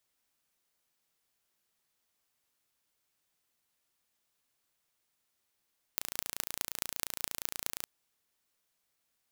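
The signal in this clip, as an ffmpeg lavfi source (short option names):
-f lavfi -i "aevalsrc='0.668*eq(mod(n,1547),0)*(0.5+0.5*eq(mod(n,9282),0))':d=1.86:s=44100"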